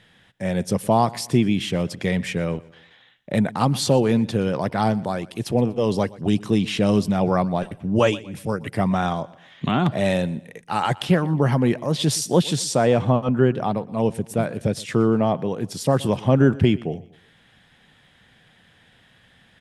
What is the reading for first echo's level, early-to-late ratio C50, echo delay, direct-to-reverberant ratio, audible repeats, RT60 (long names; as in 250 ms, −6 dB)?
−21.0 dB, no reverb audible, 121 ms, no reverb audible, 2, no reverb audible